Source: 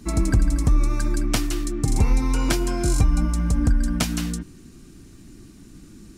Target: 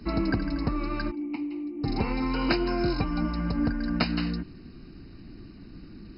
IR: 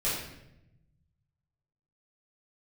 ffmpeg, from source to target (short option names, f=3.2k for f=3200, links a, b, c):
-filter_complex "[0:a]acrossover=split=170[a][b];[a]acompressor=threshold=-33dB:ratio=5[c];[c][b]amix=inputs=2:normalize=0,asplit=3[d][e][f];[d]afade=t=out:st=1.1:d=0.02[g];[e]asplit=3[h][i][j];[h]bandpass=f=300:t=q:w=8,volume=0dB[k];[i]bandpass=f=870:t=q:w=8,volume=-6dB[l];[j]bandpass=f=2.24k:t=q:w=8,volume=-9dB[m];[k][l][m]amix=inputs=3:normalize=0,afade=t=in:st=1.1:d=0.02,afade=t=out:st=1.83:d=0.02[n];[f]afade=t=in:st=1.83:d=0.02[o];[g][n][o]amix=inputs=3:normalize=0" -ar 48000 -c:a mp2 -b:a 32k